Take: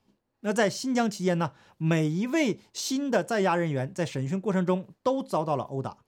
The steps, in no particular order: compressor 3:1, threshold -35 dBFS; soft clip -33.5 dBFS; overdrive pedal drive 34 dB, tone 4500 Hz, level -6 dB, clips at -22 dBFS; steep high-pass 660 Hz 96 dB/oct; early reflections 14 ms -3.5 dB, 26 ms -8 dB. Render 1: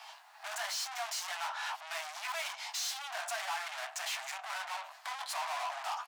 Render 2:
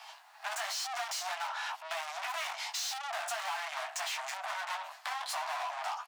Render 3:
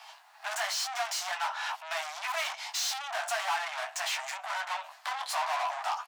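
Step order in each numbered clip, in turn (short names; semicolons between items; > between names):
early reflections > compressor > overdrive pedal > soft clip > steep high-pass; soft clip > early reflections > overdrive pedal > steep high-pass > compressor; compressor > soft clip > early reflections > overdrive pedal > steep high-pass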